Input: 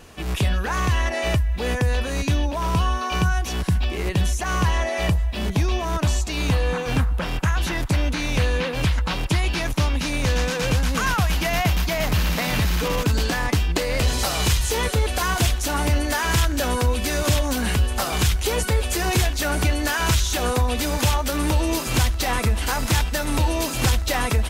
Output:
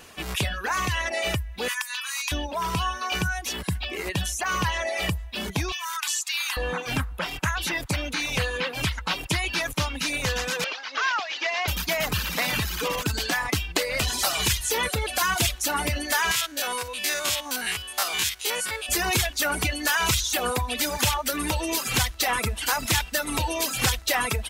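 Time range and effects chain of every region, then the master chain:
0:01.68–0:02.32: Butterworth high-pass 920 Hz 48 dB per octave + high-shelf EQ 6,600 Hz +6 dB
0:05.72–0:06.57: inverse Chebyshev high-pass filter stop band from 500 Hz + high-shelf EQ 6,300 Hz +6 dB
0:10.64–0:11.68: variable-slope delta modulation 32 kbit/s + high-pass filter 330 Hz 24 dB per octave + low-shelf EQ 440 Hz −7.5 dB
0:16.31–0:18.89: spectrum averaged block by block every 50 ms + low-pass filter 2,300 Hz 6 dB per octave + spectral tilt +4 dB per octave
whole clip: spectral tilt +2.5 dB per octave; reverb reduction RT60 1.5 s; bass and treble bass +1 dB, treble −5 dB

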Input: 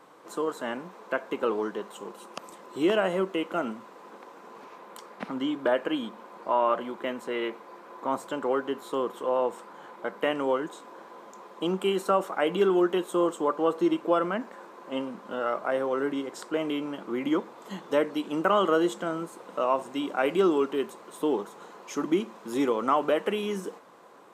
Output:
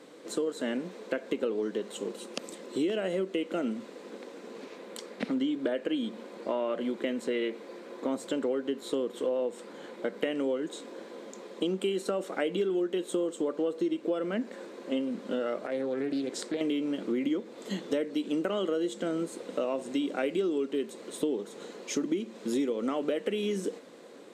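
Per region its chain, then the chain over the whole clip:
0:15.66–0:16.61: downward compressor 3 to 1, threshold −34 dBFS + highs frequency-modulated by the lows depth 0.31 ms
whole clip: octave-band graphic EQ 125/250/500/1,000/2,000/4,000/8,000 Hz +3/+12/+10/−8/+7/+10/+9 dB; downward compressor, threshold −22 dBFS; level −5 dB

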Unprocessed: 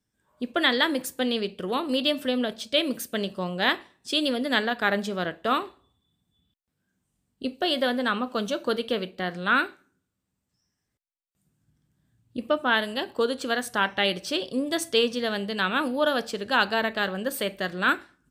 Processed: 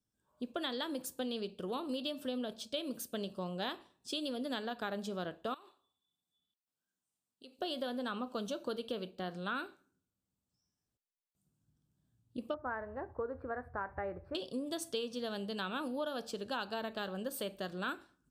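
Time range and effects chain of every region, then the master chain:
0:05.54–0:07.59: high-pass filter 1,000 Hz 6 dB per octave + downward compressor 4 to 1, threshold −41 dBFS
0:12.54–0:14.35: elliptic low-pass filter 2,000 Hz + low shelf with overshoot 130 Hz +14 dB, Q 3
whole clip: parametric band 2,000 Hz −12 dB 0.57 octaves; downward compressor, threshold −26 dBFS; level −8 dB

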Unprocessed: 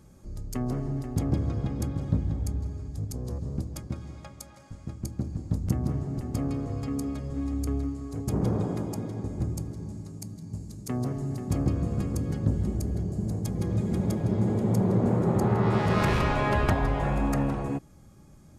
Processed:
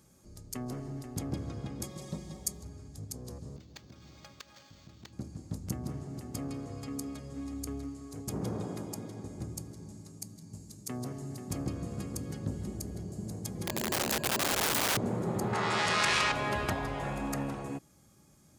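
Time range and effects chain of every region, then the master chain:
0:01.83–0:02.63: bass and treble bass −6 dB, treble +9 dB + notch filter 1,500 Hz, Q 5.9 + comb filter 5.4 ms, depth 71%
0:03.56–0:05.13: high-shelf EQ 3,700 Hz +11 dB + downward compressor 4 to 1, threshold −39 dBFS + linearly interpolated sample-rate reduction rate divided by 4×
0:13.66–0:14.97: EQ curve with evenly spaced ripples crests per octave 1.4, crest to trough 16 dB + wrap-around overflow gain 20.5 dB
0:15.53–0:16.32: low-pass filter 9,300 Hz 24 dB per octave + tilt shelving filter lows −8.5 dB, about 690 Hz + envelope flattener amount 70%
whole clip: high-pass filter 130 Hz 6 dB per octave; high-shelf EQ 2,600 Hz +9.5 dB; level −7 dB

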